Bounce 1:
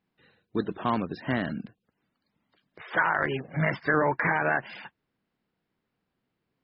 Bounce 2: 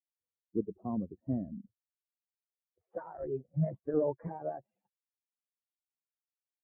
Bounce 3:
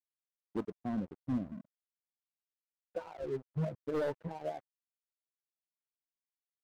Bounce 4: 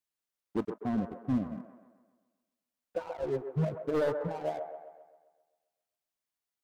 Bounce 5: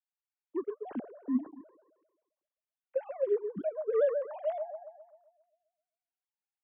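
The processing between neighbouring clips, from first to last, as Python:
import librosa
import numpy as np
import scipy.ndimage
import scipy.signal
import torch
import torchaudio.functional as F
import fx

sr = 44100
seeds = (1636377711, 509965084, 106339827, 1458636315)

y1 = fx.bin_expand(x, sr, power=2.0)
y1 = scipy.signal.sosfilt(scipy.signal.cheby1(3, 1.0, 570.0, 'lowpass', fs=sr, output='sos'), y1)
y2 = np.clip(y1, -10.0 ** (-29.0 / 20.0), 10.0 ** (-29.0 / 20.0))
y2 = fx.comb_fb(y2, sr, f0_hz=250.0, decay_s=0.2, harmonics='all', damping=0.0, mix_pct=50)
y2 = np.sign(y2) * np.maximum(np.abs(y2) - 10.0 ** (-57.5 / 20.0), 0.0)
y2 = y2 * 10.0 ** (5.5 / 20.0)
y3 = fx.echo_wet_bandpass(y2, sr, ms=132, feedback_pct=51, hz=780.0, wet_db=-6)
y3 = y3 * 10.0 ** (4.5 / 20.0)
y4 = fx.sine_speech(y3, sr)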